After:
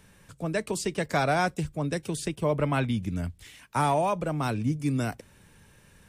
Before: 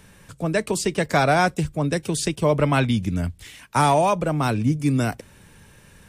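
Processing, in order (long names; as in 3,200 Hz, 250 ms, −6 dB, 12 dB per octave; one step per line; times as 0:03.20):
0:02.15–0:04.15: dynamic equaliser 5,500 Hz, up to −5 dB, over −42 dBFS, Q 0.86
level −6.5 dB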